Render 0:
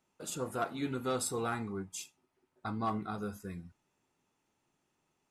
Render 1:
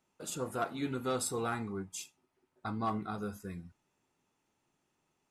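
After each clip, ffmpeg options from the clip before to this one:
-af anull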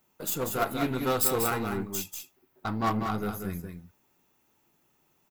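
-af "aeval=exprs='0.0631*(cos(1*acos(clip(val(0)/0.0631,-1,1)))-cos(1*PI/2))+0.0158*(cos(2*acos(clip(val(0)/0.0631,-1,1)))-cos(2*PI/2))+0.00447*(cos(8*acos(clip(val(0)/0.0631,-1,1)))-cos(8*PI/2))':c=same,aexciter=amount=9.6:drive=2.6:freq=12k,aecho=1:1:191:0.501,volume=6dB"

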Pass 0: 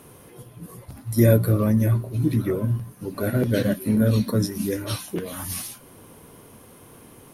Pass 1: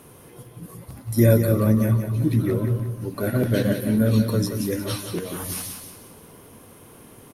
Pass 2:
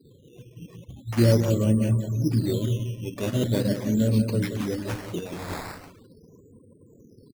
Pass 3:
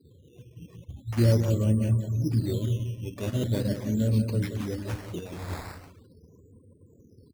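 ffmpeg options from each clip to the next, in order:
-af "aecho=1:1:179|358|537|716:0.422|0.16|0.0609|0.0231"
-af "afftfilt=real='re*gte(hypot(re,im),0.0126)':imag='im*gte(hypot(re,im),0.0126)':win_size=1024:overlap=0.75,equalizer=f=1.3k:t=o:w=0.88:g=-10.5,acrusher=samples=10:mix=1:aa=0.000001:lfo=1:lforange=10:lforate=0.41,volume=-2.5dB"
-af "equalizer=f=79:t=o:w=0.71:g=12,volume=-5dB"

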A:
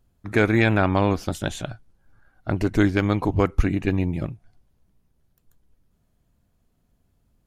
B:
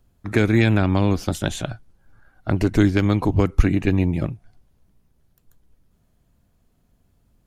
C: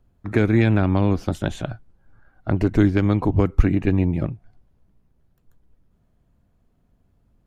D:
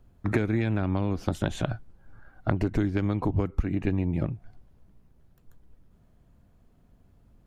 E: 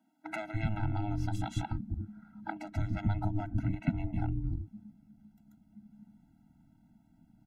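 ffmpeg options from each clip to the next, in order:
-filter_complex "[0:a]acrossover=split=340|3000[a][b][c];[b]acompressor=threshold=-27dB:ratio=6[d];[a][d][c]amix=inputs=3:normalize=0,volume=4dB"
-af "highshelf=f=3.2k:g=-12"
-af "acompressor=threshold=-25dB:ratio=10,volume=3.5dB"
-filter_complex "[0:a]aeval=exprs='val(0)*sin(2*PI*210*n/s)':c=same,acrossover=split=330[a][b];[a]adelay=290[c];[c][b]amix=inputs=2:normalize=0,afftfilt=real='re*eq(mod(floor(b*sr/1024/320),2),0)':imag='im*eq(mod(floor(b*sr/1024/320),2),0)':win_size=1024:overlap=0.75"

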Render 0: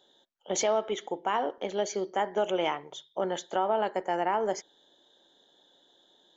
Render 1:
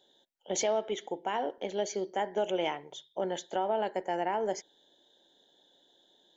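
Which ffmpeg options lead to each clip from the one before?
-af "equalizer=f=1.2k:t=o:w=0.37:g=-11.5,volume=-2dB"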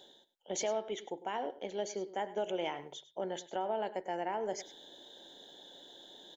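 -af "areverse,acompressor=mode=upward:threshold=-34dB:ratio=2.5,areverse,aecho=1:1:102:0.15,volume=-5dB"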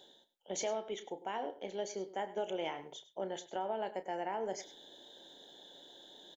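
-filter_complex "[0:a]asplit=2[a][b];[b]adelay=31,volume=-12dB[c];[a][c]amix=inputs=2:normalize=0,volume=-2dB"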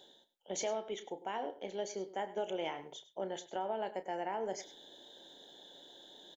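-af anull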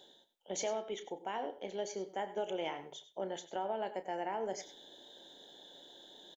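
-af "aecho=1:1:90:0.126"

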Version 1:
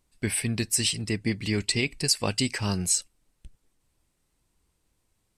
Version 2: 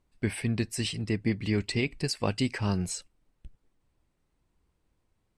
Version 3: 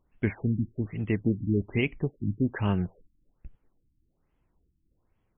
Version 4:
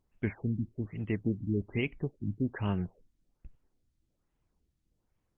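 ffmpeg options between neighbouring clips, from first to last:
-af "lowpass=f=1.8k:p=1"
-af "afftfilt=real='re*lt(b*sr/1024,330*pow(3500/330,0.5+0.5*sin(2*PI*1.2*pts/sr)))':imag='im*lt(b*sr/1024,330*pow(3500/330,0.5+0.5*sin(2*PI*1.2*pts/sr)))':win_size=1024:overlap=0.75,volume=2dB"
-af "volume=-5dB" -ar 48000 -c:a libopus -b:a 32k

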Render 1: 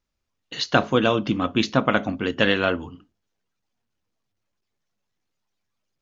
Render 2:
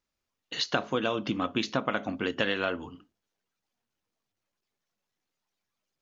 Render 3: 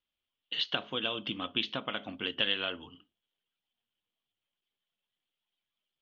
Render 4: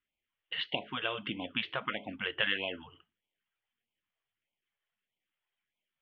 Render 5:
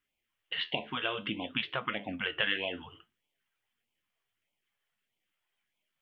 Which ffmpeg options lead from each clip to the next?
-af "lowshelf=f=160:g=-9.5,acompressor=threshold=-24dB:ratio=3,volume=-1.5dB"
-af "lowpass=f=3.2k:t=q:w=7.2,volume=-9dB"
-af "lowpass=f=2k:t=q:w=2.1,afftfilt=real='re*(1-between(b*sr/1024,200*pow(1500/200,0.5+0.5*sin(2*PI*1.6*pts/sr))/1.41,200*pow(1500/200,0.5+0.5*sin(2*PI*1.6*pts/sr))*1.41))':imag='im*(1-between(b*sr/1024,200*pow(1500/200,0.5+0.5*sin(2*PI*1.6*pts/sr))/1.41,200*pow(1500/200,0.5+0.5*sin(2*PI*1.6*pts/sr))*1.41))':win_size=1024:overlap=0.75"
-filter_complex "[0:a]asplit=2[a][b];[b]acompressor=threshold=-42dB:ratio=6,volume=-1dB[c];[a][c]amix=inputs=2:normalize=0,flanger=delay=6.6:depth=7.4:regen=70:speed=0.61:shape=triangular,volume=3.5dB"

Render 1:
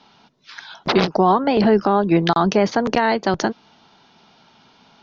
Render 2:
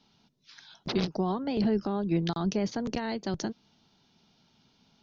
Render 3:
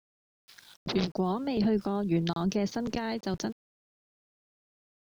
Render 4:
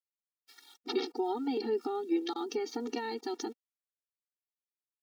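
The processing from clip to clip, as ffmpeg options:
-af "equalizer=f=1.1k:w=0.33:g=-15,volume=-4.5dB"
-af "aeval=exprs='val(0)*gte(abs(val(0)),0.00282)':c=same"
-af "afftfilt=real='re*eq(mod(floor(b*sr/1024/240),2),1)':imag='im*eq(mod(floor(b*sr/1024/240),2),1)':win_size=1024:overlap=0.75"

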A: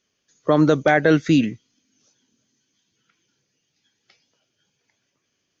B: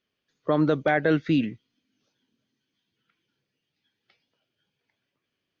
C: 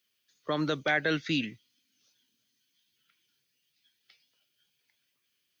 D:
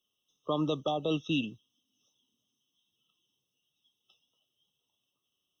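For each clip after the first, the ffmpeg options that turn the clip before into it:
-af "lowpass=f=4.2k:w=0.5412,lowpass=f=4.2k:w=1.3066,volume=-6dB"
-filter_complex "[0:a]acrossover=split=120|760[a][b][c];[a]acrusher=bits=6:mode=log:mix=0:aa=0.000001[d];[c]crystalizer=i=9.5:c=0[e];[d][b][e]amix=inputs=3:normalize=0,volume=-8.5dB"
-af "highshelf=f=5.8k:g=-7.5,afftfilt=real='re*eq(mod(floor(b*sr/1024/1300),2),0)':imag='im*eq(mod(floor(b*sr/1024/1300),2),0)':win_size=1024:overlap=0.75"

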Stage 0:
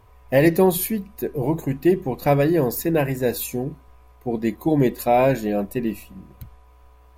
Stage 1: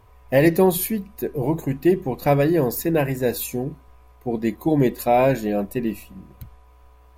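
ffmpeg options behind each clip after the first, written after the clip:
-af anull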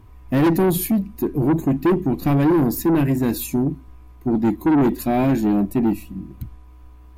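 -af "lowshelf=f=390:t=q:w=3:g=7,asoftclip=type=tanh:threshold=-13dB"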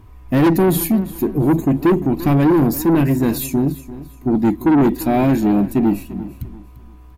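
-af "aecho=1:1:344|688|1032:0.158|0.0507|0.0162,volume=3dB"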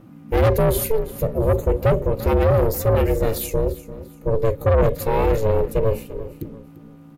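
-af "aeval=exprs='val(0)*sin(2*PI*220*n/s)':c=same"

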